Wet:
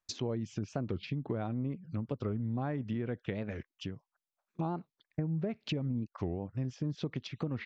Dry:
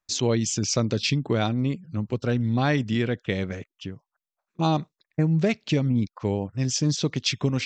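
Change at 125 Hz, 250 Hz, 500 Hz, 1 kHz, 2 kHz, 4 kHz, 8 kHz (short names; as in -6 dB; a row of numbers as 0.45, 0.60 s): -11.0 dB, -11.0 dB, -11.5 dB, -12.5 dB, -15.5 dB, -17.0 dB, under -20 dB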